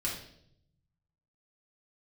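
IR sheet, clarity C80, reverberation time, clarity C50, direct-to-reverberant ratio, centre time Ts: 8.5 dB, 0.70 s, 4.5 dB, -5.0 dB, 36 ms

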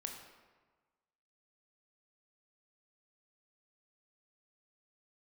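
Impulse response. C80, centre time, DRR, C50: 6.5 dB, 40 ms, 2.0 dB, 4.5 dB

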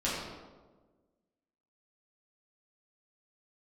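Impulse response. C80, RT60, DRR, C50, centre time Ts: 2.0 dB, 1.4 s, -9.0 dB, -0.5 dB, 83 ms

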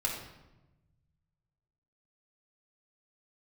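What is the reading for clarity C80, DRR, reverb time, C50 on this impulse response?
6.5 dB, -4.0 dB, 1.0 s, 3.5 dB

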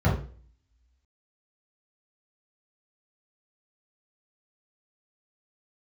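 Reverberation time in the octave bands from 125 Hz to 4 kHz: 0.50, 0.45, 0.45, 0.40, 0.40, 0.45 s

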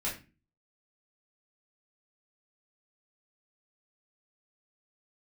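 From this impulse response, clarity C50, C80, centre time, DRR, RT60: 8.0 dB, 14.0 dB, 28 ms, -7.5 dB, 0.30 s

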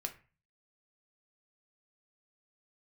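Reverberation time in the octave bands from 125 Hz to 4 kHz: 0.60, 0.40, 0.35, 0.35, 0.40, 0.25 s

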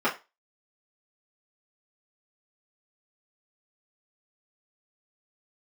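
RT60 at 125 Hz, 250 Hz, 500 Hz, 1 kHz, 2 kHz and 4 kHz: 0.20, 0.25, 0.25, 0.25, 0.25, 0.25 s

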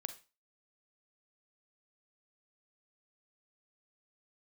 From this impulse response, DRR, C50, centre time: 9.0 dB, 12.0 dB, 7 ms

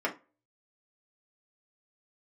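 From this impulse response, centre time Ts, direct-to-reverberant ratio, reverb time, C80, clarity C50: 12 ms, -2.5 dB, 0.30 s, 22.0 dB, 14.5 dB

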